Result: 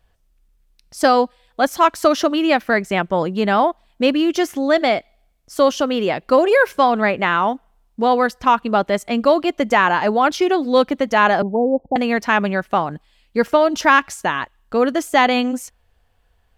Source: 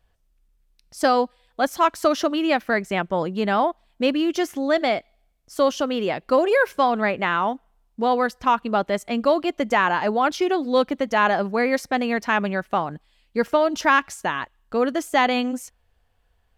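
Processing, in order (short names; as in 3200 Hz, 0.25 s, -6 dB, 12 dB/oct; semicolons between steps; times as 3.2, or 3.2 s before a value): 11.42–11.96 steep low-pass 920 Hz 96 dB/oct; gain +4.5 dB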